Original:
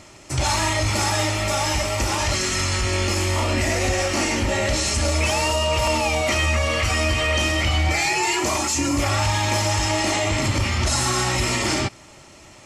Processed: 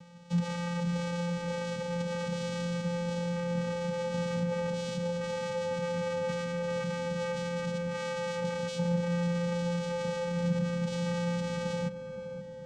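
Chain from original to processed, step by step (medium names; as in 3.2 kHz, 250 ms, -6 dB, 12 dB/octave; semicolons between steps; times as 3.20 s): compression, threshold -23 dBFS, peak gain reduction 6.5 dB; vocoder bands 4, square 173 Hz; filtered feedback delay 522 ms, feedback 74%, low-pass 1.2 kHz, level -8 dB; trim -4.5 dB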